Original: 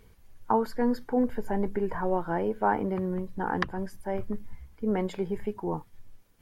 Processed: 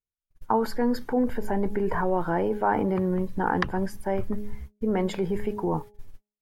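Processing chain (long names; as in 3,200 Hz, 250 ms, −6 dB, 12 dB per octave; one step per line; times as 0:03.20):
noise gate −43 dBFS, range −50 dB
hum removal 208.3 Hz, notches 4
in parallel at −1.5 dB: compressor whose output falls as the input rises −32 dBFS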